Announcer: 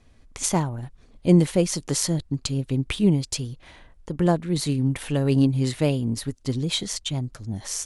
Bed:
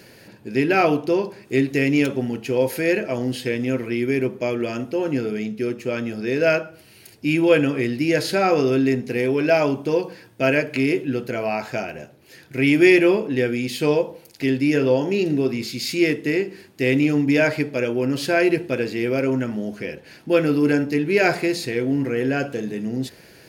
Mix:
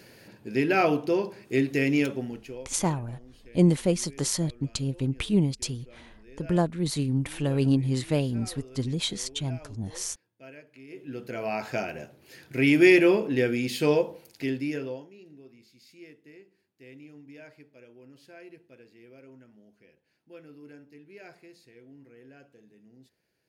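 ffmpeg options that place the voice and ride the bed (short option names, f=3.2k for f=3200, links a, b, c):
-filter_complex "[0:a]adelay=2300,volume=-3.5dB[a];[1:a]volume=20dB,afade=t=out:st=1.95:d=0.72:silence=0.0668344,afade=t=in:st=10.88:d=0.9:silence=0.0562341,afade=t=out:st=13.97:d=1.12:silence=0.0473151[b];[a][b]amix=inputs=2:normalize=0"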